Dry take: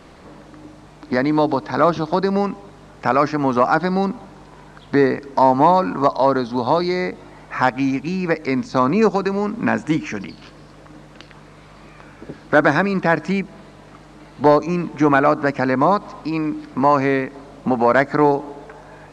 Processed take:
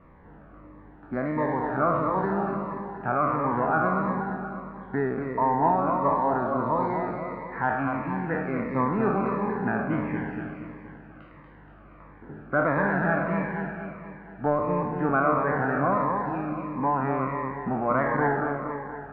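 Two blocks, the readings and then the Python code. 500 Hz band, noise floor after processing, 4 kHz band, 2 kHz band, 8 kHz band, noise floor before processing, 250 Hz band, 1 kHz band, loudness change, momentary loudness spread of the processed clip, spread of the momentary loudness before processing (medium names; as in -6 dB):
-8.5 dB, -49 dBFS, under -25 dB, -6.5 dB, no reading, -44 dBFS, -8.0 dB, -6.0 dB, -8.0 dB, 11 LU, 10 LU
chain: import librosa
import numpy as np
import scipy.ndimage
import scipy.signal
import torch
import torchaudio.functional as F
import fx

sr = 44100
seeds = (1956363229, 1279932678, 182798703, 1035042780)

y = fx.spec_trails(x, sr, decay_s=1.1)
y = scipy.signal.sosfilt(scipy.signal.butter(4, 1700.0, 'lowpass', fs=sr, output='sos'), y)
y = fx.peak_eq(y, sr, hz=380.0, db=-7.0, octaves=2.1)
y = fx.echo_feedback(y, sr, ms=237, feedback_pct=55, wet_db=-4.5)
y = fx.notch_cascade(y, sr, direction='falling', hz=1.5)
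y = y * 10.0 ** (-5.5 / 20.0)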